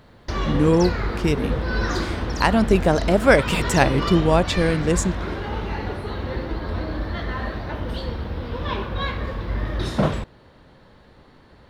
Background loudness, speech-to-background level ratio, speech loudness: −27.0 LKFS, 7.0 dB, −20.0 LKFS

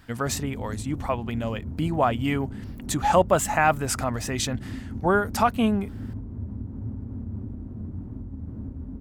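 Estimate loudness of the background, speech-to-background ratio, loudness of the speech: −36.5 LKFS, 11.5 dB, −25.0 LKFS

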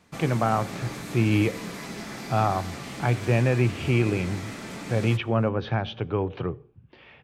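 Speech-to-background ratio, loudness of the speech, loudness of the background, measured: 11.0 dB, −26.0 LKFS, −37.0 LKFS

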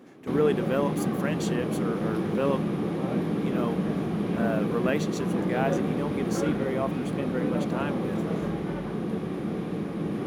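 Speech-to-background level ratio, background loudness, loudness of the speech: −3.0 dB, −29.0 LKFS, −32.0 LKFS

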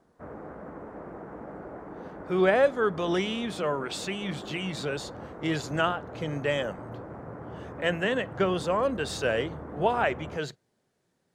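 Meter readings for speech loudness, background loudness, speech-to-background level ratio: −29.0 LKFS, −41.5 LKFS, 12.5 dB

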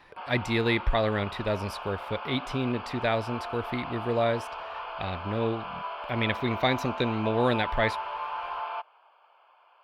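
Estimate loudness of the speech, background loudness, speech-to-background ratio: −29.0 LKFS, −36.5 LKFS, 7.5 dB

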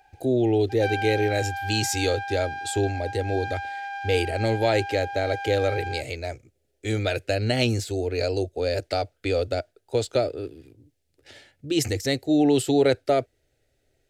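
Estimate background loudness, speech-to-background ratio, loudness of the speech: −32.5 LKFS, 7.5 dB, −25.0 LKFS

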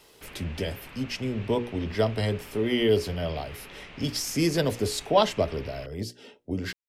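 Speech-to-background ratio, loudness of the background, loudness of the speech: 17.5 dB, −45.5 LKFS, −28.0 LKFS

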